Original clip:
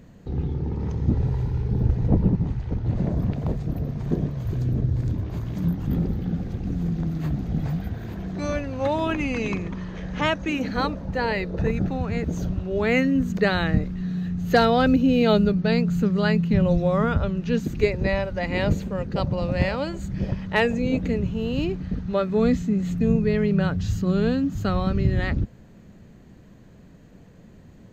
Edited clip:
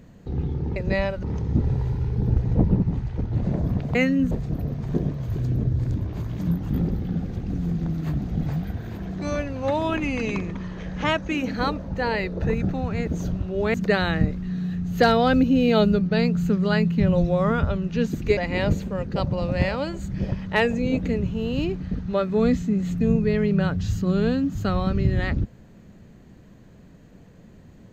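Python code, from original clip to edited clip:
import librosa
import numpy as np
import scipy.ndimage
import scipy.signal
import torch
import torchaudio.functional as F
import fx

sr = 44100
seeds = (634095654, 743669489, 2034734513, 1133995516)

y = fx.edit(x, sr, fx.move(start_s=12.91, length_s=0.36, to_s=3.48),
    fx.move(start_s=17.9, length_s=0.47, to_s=0.76), tone=tone)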